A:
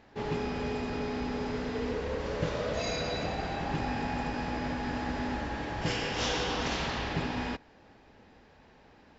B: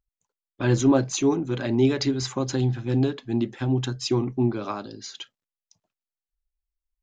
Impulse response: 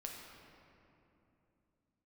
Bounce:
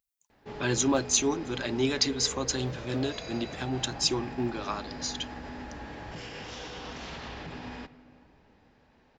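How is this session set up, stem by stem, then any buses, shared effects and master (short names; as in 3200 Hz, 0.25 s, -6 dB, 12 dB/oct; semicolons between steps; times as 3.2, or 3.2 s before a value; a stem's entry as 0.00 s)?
-7.5 dB, 0.30 s, send -8.5 dB, limiter -25.5 dBFS, peak gain reduction 7 dB
-2.5 dB, 0.00 s, no send, tilt +3 dB/oct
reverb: on, RT60 2.9 s, pre-delay 7 ms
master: dry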